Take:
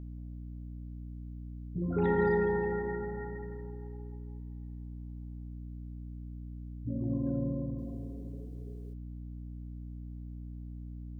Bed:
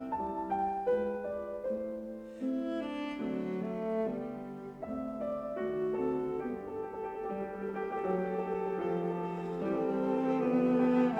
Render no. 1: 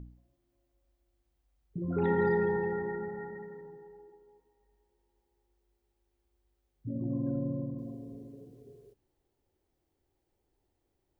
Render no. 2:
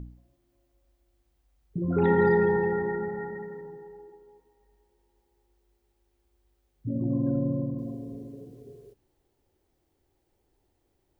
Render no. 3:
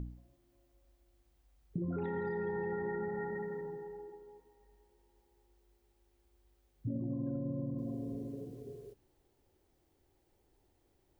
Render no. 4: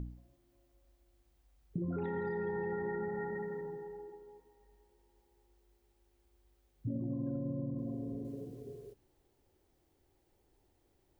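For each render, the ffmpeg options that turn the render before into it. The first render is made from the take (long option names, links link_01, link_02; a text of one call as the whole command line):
ffmpeg -i in.wav -af "bandreject=frequency=60:width_type=h:width=4,bandreject=frequency=120:width_type=h:width=4,bandreject=frequency=180:width_type=h:width=4,bandreject=frequency=240:width_type=h:width=4,bandreject=frequency=300:width_type=h:width=4" out.wav
ffmpeg -i in.wav -af "volume=6dB" out.wav
ffmpeg -i in.wav -af "alimiter=limit=-21.5dB:level=0:latency=1:release=177,acompressor=threshold=-35dB:ratio=4" out.wav
ffmpeg -i in.wav -filter_complex "[0:a]asettb=1/sr,asplit=3[link_01][link_02][link_03];[link_01]atrim=end=7.534[link_04];[link_02]atrim=start=7.53:end=8.25,asetpts=PTS-STARTPTS,afade=type=in:duration=0.004:curve=qsin,afade=type=out:start_time=0.716:duration=0.004:curve=qsin,highshelf=frequency=2100:gain=-6[link_05];[link_03]atrim=start=8.246[link_06];[link_04][link_05]acrossfade=duration=0.004:curve1=hsin:curve2=qsin[link_07];[link_07][link_06]acrossfade=duration=0.004:curve1=qsin:curve2=hsin" out.wav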